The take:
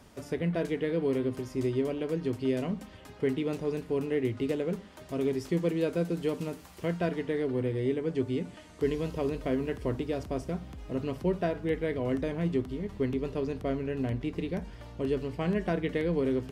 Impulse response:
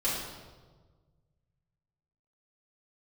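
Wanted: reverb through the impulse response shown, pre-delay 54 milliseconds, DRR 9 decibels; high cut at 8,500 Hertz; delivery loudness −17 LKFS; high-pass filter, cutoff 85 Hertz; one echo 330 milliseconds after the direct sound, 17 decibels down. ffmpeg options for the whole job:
-filter_complex "[0:a]highpass=85,lowpass=8500,aecho=1:1:330:0.141,asplit=2[link_01][link_02];[1:a]atrim=start_sample=2205,adelay=54[link_03];[link_02][link_03]afir=irnorm=-1:irlink=0,volume=-17.5dB[link_04];[link_01][link_04]amix=inputs=2:normalize=0,volume=14dB"

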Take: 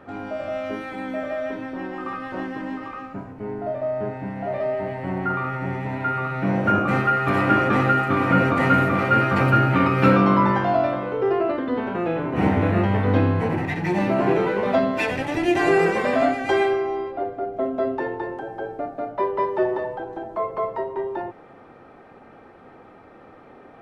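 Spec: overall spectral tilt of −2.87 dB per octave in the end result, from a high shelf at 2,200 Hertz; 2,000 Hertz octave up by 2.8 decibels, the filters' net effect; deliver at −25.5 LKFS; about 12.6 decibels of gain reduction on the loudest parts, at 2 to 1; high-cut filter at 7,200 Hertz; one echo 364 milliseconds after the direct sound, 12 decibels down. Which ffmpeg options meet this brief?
ffmpeg -i in.wav -af "lowpass=7200,equalizer=frequency=2000:width_type=o:gain=6,highshelf=frequency=2200:gain=-4,acompressor=threshold=-36dB:ratio=2,aecho=1:1:364:0.251,volume=6dB" out.wav

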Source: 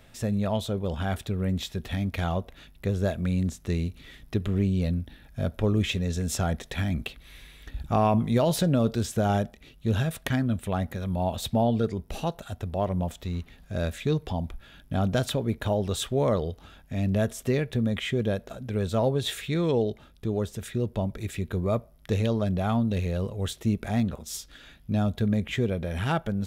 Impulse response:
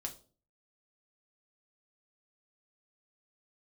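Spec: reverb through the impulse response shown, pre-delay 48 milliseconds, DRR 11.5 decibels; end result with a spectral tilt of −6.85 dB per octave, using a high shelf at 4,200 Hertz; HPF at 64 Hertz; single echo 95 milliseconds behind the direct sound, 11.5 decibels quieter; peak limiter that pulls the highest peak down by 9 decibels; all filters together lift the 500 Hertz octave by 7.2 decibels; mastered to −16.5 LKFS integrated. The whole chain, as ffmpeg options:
-filter_complex "[0:a]highpass=64,equalizer=frequency=500:width_type=o:gain=9,highshelf=frequency=4200:gain=-5.5,alimiter=limit=-15.5dB:level=0:latency=1,aecho=1:1:95:0.266,asplit=2[link_01][link_02];[1:a]atrim=start_sample=2205,adelay=48[link_03];[link_02][link_03]afir=irnorm=-1:irlink=0,volume=-10dB[link_04];[link_01][link_04]amix=inputs=2:normalize=0,volume=10dB"

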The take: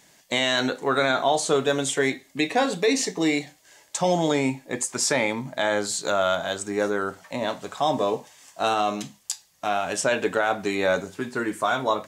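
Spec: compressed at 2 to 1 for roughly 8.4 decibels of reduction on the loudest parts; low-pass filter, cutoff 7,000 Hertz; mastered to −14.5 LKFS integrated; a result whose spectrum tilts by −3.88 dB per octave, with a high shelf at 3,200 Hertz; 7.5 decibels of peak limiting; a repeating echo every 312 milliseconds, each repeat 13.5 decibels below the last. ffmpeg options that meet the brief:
ffmpeg -i in.wav -af "lowpass=7000,highshelf=frequency=3200:gain=-5.5,acompressor=threshold=-33dB:ratio=2,alimiter=level_in=0.5dB:limit=-24dB:level=0:latency=1,volume=-0.5dB,aecho=1:1:312|624:0.211|0.0444,volume=21dB" out.wav

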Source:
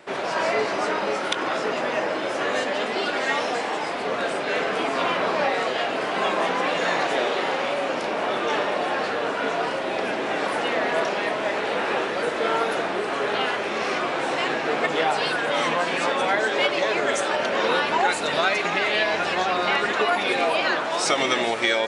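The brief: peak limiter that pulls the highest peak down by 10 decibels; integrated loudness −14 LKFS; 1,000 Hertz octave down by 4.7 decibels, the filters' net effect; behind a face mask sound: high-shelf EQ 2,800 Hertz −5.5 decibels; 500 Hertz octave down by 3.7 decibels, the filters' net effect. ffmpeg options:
ffmpeg -i in.wav -af "equalizer=frequency=500:width_type=o:gain=-3,equalizer=frequency=1000:width_type=o:gain=-4.5,alimiter=limit=-16dB:level=0:latency=1,highshelf=frequency=2800:gain=-5.5,volume=13.5dB" out.wav

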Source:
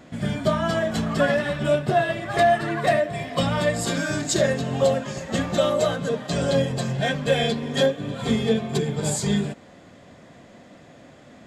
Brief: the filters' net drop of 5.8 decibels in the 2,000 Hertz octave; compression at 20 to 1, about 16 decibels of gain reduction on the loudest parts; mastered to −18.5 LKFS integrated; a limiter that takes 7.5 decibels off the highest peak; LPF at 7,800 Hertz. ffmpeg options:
ffmpeg -i in.wav -af "lowpass=7800,equalizer=frequency=2000:width_type=o:gain=-7.5,acompressor=threshold=-31dB:ratio=20,volume=19dB,alimiter=limit=-9dB:level=0:latency=1" out.wav

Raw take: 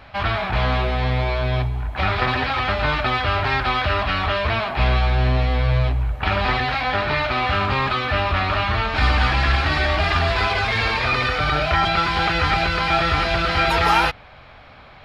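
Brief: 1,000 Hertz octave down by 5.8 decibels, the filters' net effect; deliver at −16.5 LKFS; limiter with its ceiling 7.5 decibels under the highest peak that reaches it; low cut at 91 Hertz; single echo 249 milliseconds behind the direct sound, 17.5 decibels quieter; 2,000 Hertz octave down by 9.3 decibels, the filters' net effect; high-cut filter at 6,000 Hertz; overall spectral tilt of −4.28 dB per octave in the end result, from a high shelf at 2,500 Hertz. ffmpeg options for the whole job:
ffmpeg -i in.wav -af "highpass=91,lowpass=6000,equalizer=frequency=1000:width_type=o:gain=-4.5,equalizer=frequency=2000:width_type=o:gain=-8,highshelf=frequency=2500:gain=-5.5,alimiter=limit=-18dB:level=0:latency=1,aecho=1:1:249:0.133,volume=11dB" out.wav

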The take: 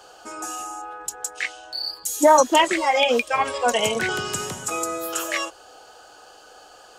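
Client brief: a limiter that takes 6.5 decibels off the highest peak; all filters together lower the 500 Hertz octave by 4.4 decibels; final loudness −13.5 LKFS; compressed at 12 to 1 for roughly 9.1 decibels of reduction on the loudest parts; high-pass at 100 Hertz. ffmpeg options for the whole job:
ffmpeg -i in.wav -af "highpass=100,equalizer=frequency=500:width_type=o:gain=-5.5,acompressor=threshold=-21dB:ratio=12,volume=15.5dB,alimiter=limit=-3dB:level=0:latency=1" out.wav

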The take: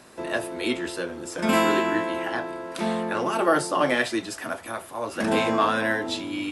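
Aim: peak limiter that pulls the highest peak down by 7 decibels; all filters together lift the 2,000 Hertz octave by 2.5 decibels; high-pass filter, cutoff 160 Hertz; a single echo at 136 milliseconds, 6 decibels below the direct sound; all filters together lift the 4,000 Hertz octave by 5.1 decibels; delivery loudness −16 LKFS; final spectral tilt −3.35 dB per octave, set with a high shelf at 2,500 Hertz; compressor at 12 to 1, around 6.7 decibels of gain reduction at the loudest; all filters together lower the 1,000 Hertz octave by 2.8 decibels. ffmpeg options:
ffmpeg -i in.wav -af "highpass=160,equalizer=frequency=1000:width_type=o:gain=-4.5,equalizer=frequency=2000:width_type=o:gain=4.5,highshelf=frequency=2500:gain=-4.5,equalizer=frequency=4000:width_type=o:gain=9,acompressor=threshold=-23dB:ratio=12,alimiter=limit=-19dB:level=0:latency=1,aecho=1:1:136:0.501,volume=12.5dB" out.wav

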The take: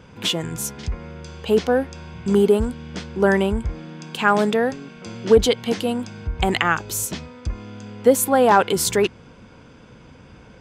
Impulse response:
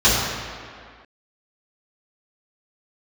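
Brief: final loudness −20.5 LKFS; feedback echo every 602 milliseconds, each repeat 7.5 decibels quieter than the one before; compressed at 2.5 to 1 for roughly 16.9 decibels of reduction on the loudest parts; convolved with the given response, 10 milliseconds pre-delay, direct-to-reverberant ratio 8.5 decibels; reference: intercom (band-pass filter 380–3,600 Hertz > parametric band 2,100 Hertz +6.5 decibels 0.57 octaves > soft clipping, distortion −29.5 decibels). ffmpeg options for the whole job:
-filter_complex "[0:a]acompressor=threshold=-35dB:ratio=2.5,aecho=1:1:602|1204|1806|2408|3010:0.422|0.177|0.0744|0.0312|0.0131,asplit=2[link_01][link_02];[1:a]atrim=start_sample=2205,adelay=10[link_03];[link_02][link_03]afir=irnorm=-1:irlink=0,volume=-31.5dB[link_04];[link_01][link_04]amix=inputs=2:normalize=0,highpass=380,lowpass=3600,equalizer=frequency=2100:width_type=o:width=0.57:gain=6.5,asoftclip=threshold=-14dB,volume=14.5dB"

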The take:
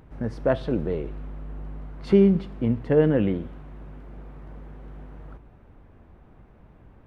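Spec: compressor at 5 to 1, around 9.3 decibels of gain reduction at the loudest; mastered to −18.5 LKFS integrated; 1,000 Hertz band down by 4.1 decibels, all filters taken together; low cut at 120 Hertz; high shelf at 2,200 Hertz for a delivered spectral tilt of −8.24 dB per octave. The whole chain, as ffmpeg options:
ffmpeg -i in.wav -af "highpass=120,equalizer=frequency=1000:width_type=o:gain=-5.5,highshelf=frequency=2200:gain=-5,acompressor=threshold=-23dB:ratio=5,volume=11.5dB" out.wav

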